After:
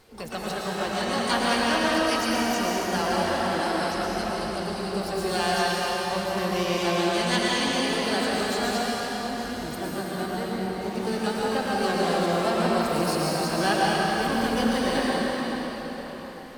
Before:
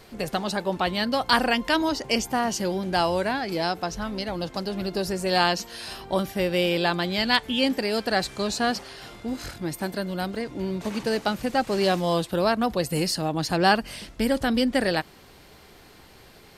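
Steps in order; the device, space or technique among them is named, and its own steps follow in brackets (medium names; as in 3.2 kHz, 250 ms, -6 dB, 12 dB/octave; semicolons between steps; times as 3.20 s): shimmer-style reverb (harmony voices +12 st -7 dB; reverberation RT60 5.1 s, pre-delay 103 ms, DRR -6 dB); trim -8 dB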